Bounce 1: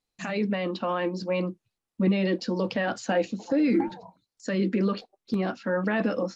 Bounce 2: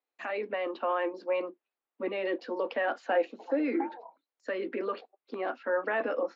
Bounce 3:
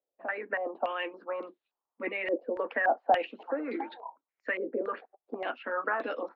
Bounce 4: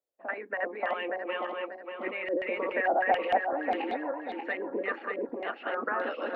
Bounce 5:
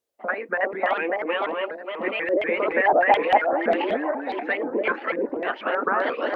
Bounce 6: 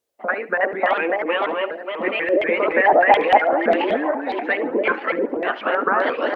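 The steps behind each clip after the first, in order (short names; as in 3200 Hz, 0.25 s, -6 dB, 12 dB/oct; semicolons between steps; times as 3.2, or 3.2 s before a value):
elliptic high-pass 250 Hz, stop band 50 dB; three-band isolator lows -14 dB, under 350 Hz, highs -24 dB, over 2900 Hz
harmonic-percussive split harmonic -8 dB; stepped low-pass 3.5 Hz 570–3800 Hz
regenerating reverse delay 0.294 s, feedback 58%, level 0 dB; gain -2 dB
shaped vibrato saw up 4.1 Hz, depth 250 cents; gain +8 dB
feedback echo 71 ms, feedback 41%, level -17.5 dB; gain +4 dB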